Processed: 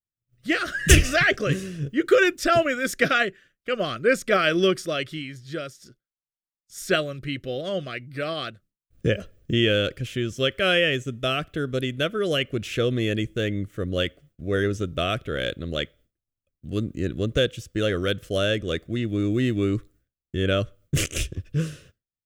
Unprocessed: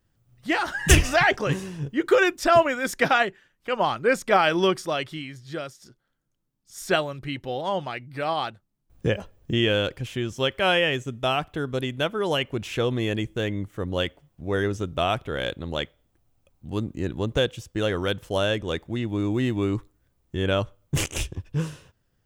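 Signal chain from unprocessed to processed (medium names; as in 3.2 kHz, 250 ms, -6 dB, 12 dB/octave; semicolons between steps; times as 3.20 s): expander -50 dBFS; Butterworth band-stop 890 Hz, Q 1.5; trim +1.5 dB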